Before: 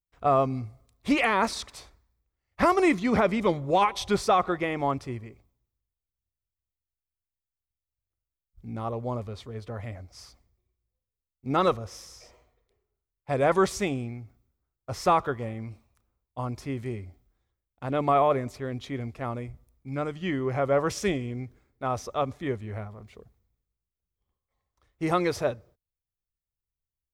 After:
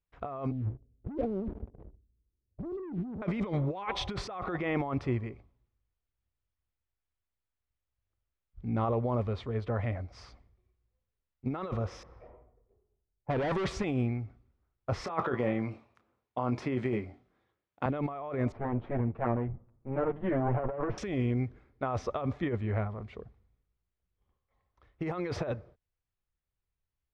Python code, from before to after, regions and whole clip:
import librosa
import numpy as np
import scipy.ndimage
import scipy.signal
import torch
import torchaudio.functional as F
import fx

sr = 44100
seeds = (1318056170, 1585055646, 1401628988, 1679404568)

y = fx.chain(x, sr, fx.cheby2_lowpass(hz=1400.0, order=4, stop_db=60),
    fx.leveller(passes=2), at=(0.51, 3.22))
y = fx.chain(y, sr, fx.clip_hard(threshold_db=-28.0),
    fx.env_lowpass(base_hz=630.0, full_db=-31.0), at=(12.03, 13.84))
y = fx.chain(y, sr, fx.highpass(hz=180.0, slope=12),
    fx.over_compress(threshold_db=-28.0, ratio=-0.5),
    fx.doubler(ms=24.0, db=-11), at=(15.04, 17.86))
y = fx.chain(y, sr, fx.lower_of_two(delay_ms=8.8),
    fx.lowpass(hz=1100.0, slope=12), at=(18.52, 20.98))
y = scipy.signal.sosfilt(scipy.signal.butter(2, 2700.0, 'lowpass', fs=sr, output='sos'), y)
y = fx.over_compress(y, sr, threshold_db=-32.0, ratio=-1.0)